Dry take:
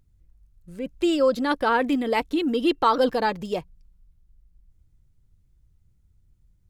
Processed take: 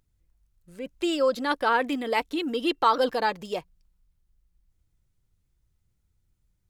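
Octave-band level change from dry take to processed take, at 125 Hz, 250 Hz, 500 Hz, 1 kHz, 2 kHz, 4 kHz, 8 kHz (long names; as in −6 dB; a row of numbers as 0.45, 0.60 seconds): −8.0 dB, −6.0 dB, −3.0 dB, −1.0 dB, −0.5 dB, 0.0 dB, can't be measured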